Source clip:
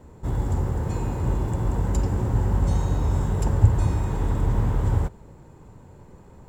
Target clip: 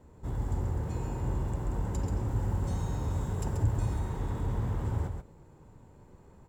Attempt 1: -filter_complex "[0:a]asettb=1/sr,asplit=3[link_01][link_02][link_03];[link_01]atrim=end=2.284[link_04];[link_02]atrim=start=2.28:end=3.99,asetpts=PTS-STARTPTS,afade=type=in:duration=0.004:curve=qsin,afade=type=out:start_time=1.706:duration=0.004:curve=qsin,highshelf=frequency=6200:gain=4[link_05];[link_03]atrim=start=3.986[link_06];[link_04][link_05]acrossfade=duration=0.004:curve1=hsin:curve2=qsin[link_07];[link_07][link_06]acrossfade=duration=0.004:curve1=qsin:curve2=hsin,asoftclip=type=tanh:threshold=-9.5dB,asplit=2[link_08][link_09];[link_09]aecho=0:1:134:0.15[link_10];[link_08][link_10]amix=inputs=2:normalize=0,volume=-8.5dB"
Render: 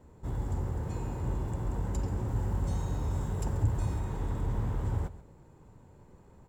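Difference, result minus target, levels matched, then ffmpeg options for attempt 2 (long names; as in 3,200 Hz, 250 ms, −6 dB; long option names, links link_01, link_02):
echo-to-direct −10.5 dB
-filter_complex "[0:a]asettb=1/sr,asplit=3[link_01][link_02][link_03];[link_01]atrim=end=2.284[link_04];[link_02]atrim=start=2.28:end=3.99,asetpts=PTS-STARTPTS,afade=type=in:duration=0.004:curve=qsin,afade=type=out:start_time=1.706:duration=0.004:curve=qsin,highshelf=frequency=6200:gain=4[link_05];[link_03]atrim=start=3.986[link_06];[link_04][link_05]acrossfade=duration=0.004:curve1=hsin:curve2=qsin[link_07];[link_07][link_06]acrossfade=duration=0.004:curve1=qsin:curve2=hsin,asoftclip=type=tanh:threshold=-9.5dB,asplit=2[link_08][link_09];[link_09]aecho=0:1:134:0.501[link_10];[link_08][link_10]amix=inputs=2:normalize=0,volume=-8.5dB"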